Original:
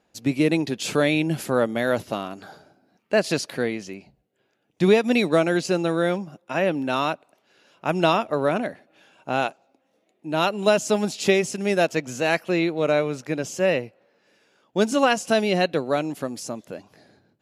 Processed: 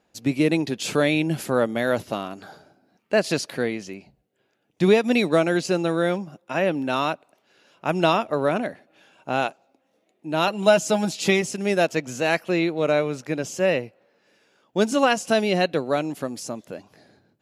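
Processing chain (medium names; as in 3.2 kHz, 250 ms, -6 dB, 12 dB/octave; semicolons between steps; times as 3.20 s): 10.47–11.42 s: comb 6.1 ms, depth 56%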